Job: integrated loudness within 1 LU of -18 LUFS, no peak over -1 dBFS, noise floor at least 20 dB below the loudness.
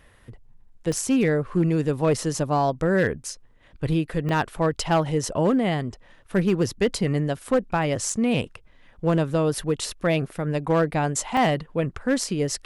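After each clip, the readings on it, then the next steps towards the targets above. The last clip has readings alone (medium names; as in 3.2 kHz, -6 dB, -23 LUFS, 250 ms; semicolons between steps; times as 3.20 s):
clipped samples 0.9%; clipping level -14.0 dBFS; dropouts 4; longest dropout 2.9 ms; loudness -24.0 LUFS; peak level -14.0 dBFS; loudness target -18.0 LUFS
-> clip repair -14 dBFS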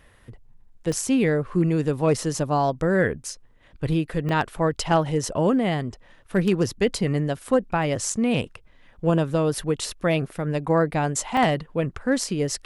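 clipped samples 0.0%; dropouts 4; longest dropout 2.9 ms
-> interpolate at 0.92/4.29/8.12/11.37 s, 2.9 ms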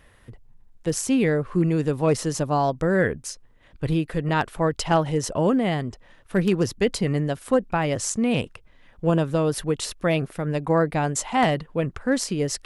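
dropouts 0; loudness -24.0 LUFS; peak level -6.0 dBFS; loudness target -18.0 LUFS
-> trim +6 dB; peak limiter -1 dBFS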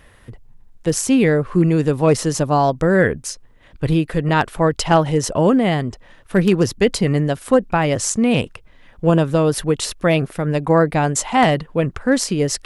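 loudness -18.0 LUFS; peak level -1.0 dBFS; noise floor -49 dBFS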